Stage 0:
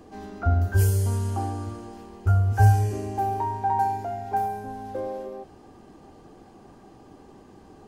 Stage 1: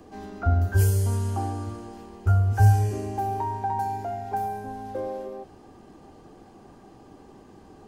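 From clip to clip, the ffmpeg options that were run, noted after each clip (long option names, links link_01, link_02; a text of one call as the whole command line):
ffmpeg -i in.wav -filter_complex "[0:a]acrossover=split=320|3000[link_01][link_02][link_03];[link_02]acompressor=threshold=-25dB:ratio=6[link_04];[link_01][link_04][link_03]amix=inputs=3:normalize=0" out.wav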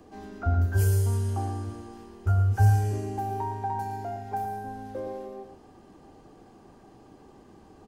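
ffmpeg -i in.wav -af "aecho=1:1:115:0.376,volume=-3.5dB" out.wav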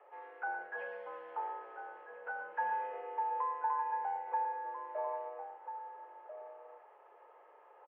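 ffmpeg -i in.wav -filter_complex "[0:a]highpass=frequency=470:width_type=q:width=0.5412,highpass=frequency=470:width_type=q:width=1.307,lowpass=frequency=2400:width_type=q:width=0.5176,lowpass=frequency=2400:width_type=q:width=0.7071,lowpass=frequency=2400:width_type=q:width=1.932,afreqshift=95,asplit=2[link_01][link_02];[link_02]adelay=1341,volume=-8dB,highshelf=frequency=4000:gain=-30.2[link_03];[link_01][link_03]amix=inputs=2:normalize=0,volume=-2.5dB" out.wav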